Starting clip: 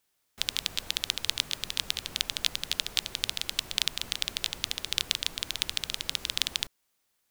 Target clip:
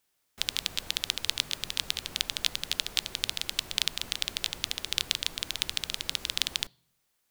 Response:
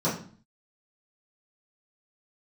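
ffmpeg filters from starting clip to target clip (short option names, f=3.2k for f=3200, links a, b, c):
-filter_complex "[0:a]asplit=2[a][b];[1:a]atrim=start_sample=2205,asetrate=33516,aresample=44100[c];[b][c]afir=irnorm=-1:irlink=0,volume=-35.5dB[d];[a][d]amix=inputs=2:normalize=0"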